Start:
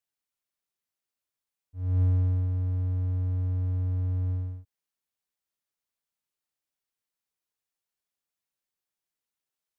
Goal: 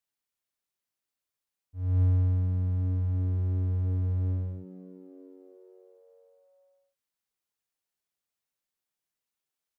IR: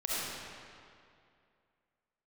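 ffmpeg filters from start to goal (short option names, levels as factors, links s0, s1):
-filter_complex "[0:a]asplit=6[s0][s1][s2][s3][s4][s5];[s1]adelay=460,afreqshift=93,volume=0.1[s6];[s2]adelay=920,afreqshift=186,volume=0.061[s7];[s3]adelay=1380,afreqshift=279,volume=0.0372[s8];[s4]adelay=1840,afreqshift=372,volume=0.0226[s9];[s5]adelay=2300,afreqshift=465,volume=0.0138[s10];[s0][s6][s7][s8][s9][s10]amix=inputs=6:normalize=0"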